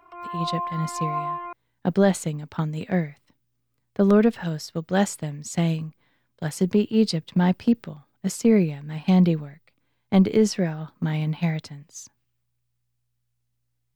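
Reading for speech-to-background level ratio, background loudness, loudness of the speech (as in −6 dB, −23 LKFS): 6.5 dB, −30.5 LKFS, −24.0 LKFS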